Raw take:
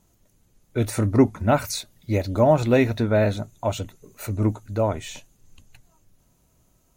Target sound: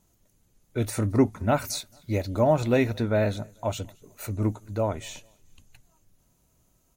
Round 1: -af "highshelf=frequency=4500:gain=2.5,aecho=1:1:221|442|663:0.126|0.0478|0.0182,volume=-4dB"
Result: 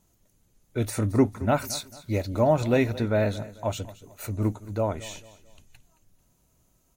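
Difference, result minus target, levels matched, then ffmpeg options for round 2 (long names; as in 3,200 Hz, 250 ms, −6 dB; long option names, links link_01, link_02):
echo-to-direct +10 dB
-af "highshelf=frequency=4500:gain=2.5,aecho=1:1:221|442:0.0398|0.0151,volume=-4dB"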